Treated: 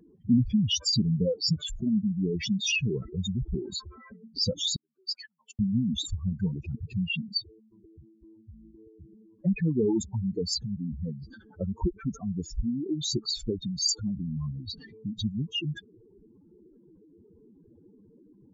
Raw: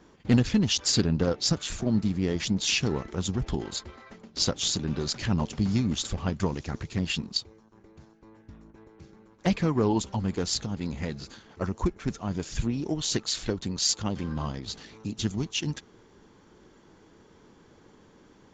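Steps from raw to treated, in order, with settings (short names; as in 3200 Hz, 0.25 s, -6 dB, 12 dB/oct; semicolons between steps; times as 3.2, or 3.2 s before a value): spectral contrast raised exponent 3.9; 4.76–5.59 HPF 1000 Hz 24 dB/oct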